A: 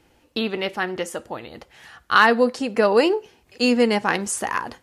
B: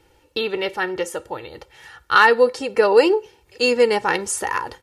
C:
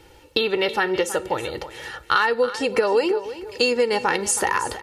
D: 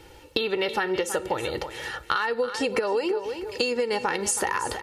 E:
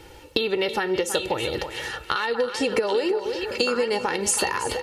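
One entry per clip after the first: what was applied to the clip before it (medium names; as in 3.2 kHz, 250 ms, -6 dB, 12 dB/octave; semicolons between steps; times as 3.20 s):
comb 2.2 ms, depth 66%
peaking EQ 3.9 kHz +2 dB; compression 5:1, threshold -25 dBFS, peak gain reduction 15.5 dB; feedback delay 323 ms, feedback 27%, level -14 dB; trim +7 dB
compression, threshold -23 dBFS, peak gain reduction 9 dB; trim +1 dB
dynamic bell 1.3 kHz, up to -4 dB, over -35 dBFS, Q 0.74; on a send: repeats whose band climbs or falls 786 ms, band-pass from 3.4 kHz, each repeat -1.4 oct, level -3 dB; on the sum: trim +3 dB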